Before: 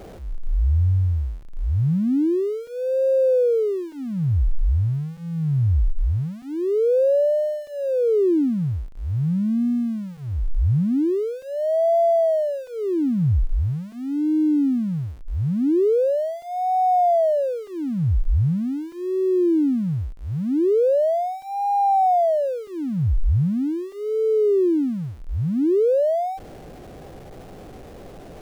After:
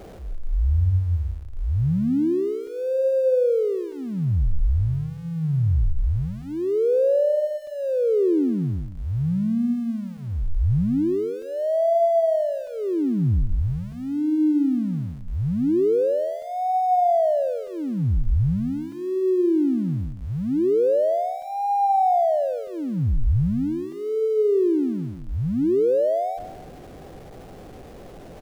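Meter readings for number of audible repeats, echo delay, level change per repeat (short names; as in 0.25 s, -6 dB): 3, 0.165 s, -10.5 dB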